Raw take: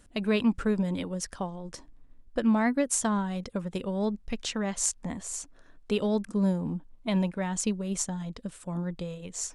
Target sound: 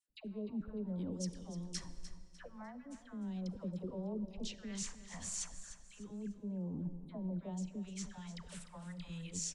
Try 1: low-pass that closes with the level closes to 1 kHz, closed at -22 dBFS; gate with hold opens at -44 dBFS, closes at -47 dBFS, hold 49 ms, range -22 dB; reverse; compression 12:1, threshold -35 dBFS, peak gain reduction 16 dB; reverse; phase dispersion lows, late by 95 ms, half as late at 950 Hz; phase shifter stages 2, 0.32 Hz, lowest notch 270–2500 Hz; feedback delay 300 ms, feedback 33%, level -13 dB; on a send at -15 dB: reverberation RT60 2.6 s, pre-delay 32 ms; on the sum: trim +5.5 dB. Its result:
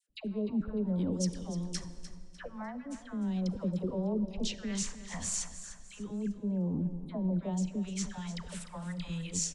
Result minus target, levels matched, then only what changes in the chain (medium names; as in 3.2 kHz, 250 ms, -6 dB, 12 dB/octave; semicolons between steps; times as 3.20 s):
compression: peak gain reduction -8.5 dB
change: compression 12:1, threshold -44.5 dBFS, peak gain reduction 24.5 dB